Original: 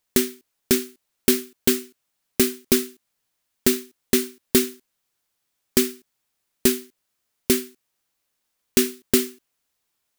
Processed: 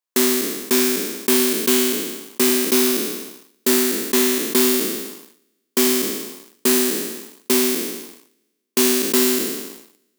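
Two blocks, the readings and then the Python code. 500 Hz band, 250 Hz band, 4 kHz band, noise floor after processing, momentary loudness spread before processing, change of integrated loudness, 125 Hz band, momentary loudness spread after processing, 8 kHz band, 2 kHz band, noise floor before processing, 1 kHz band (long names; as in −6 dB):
+5.0 dB, +4.0 dB, +6.5 dB, −73 dBFS, 10 LU, +4.5 dB, −6.5 dB, 13 LU, +6.5 dB, +7.0 dB, −77 dBFS, +12.0 dB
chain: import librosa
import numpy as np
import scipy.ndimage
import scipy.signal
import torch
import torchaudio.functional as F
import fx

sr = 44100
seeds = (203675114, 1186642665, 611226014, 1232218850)

y = fx.spec_trails(x, sr, decay_s=1.38)
y = fx.leveller(y, sr, passes=3)
y = scipy.signal.sosfilt(scipy.signal.butter(4, 220.0, 'highpass', fs=sr, output='sos'), y)
y = fx.peak_eq(y, sr, hz=1100.0, db=6.5, octaves=0.24)
y = y * librosa.db_to_amplitude(-8.5)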